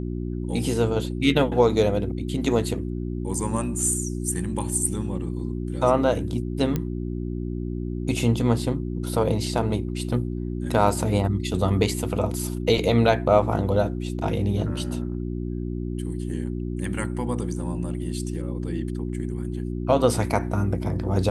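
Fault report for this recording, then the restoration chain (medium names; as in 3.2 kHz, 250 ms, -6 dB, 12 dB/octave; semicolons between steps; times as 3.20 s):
hum 60 Hz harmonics 6 -29 dBFS
6.76 s: pop -12 dBFS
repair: de-click; de-hum 60 Hz, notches 6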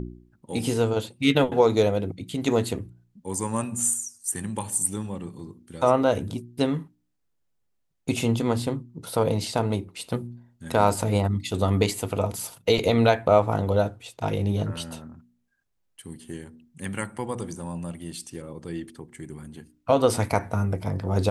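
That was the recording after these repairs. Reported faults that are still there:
nothing left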